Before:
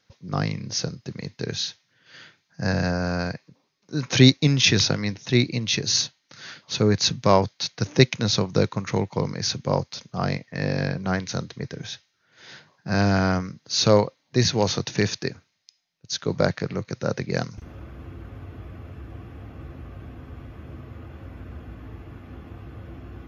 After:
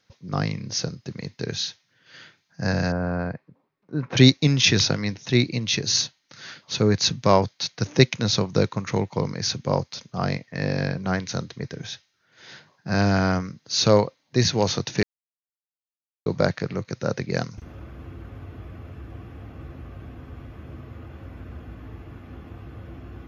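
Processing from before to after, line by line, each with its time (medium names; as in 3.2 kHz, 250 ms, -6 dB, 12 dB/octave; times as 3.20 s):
2.92–4.17 s: low-pass 1.5 kHz
15.03–16.26 s: mute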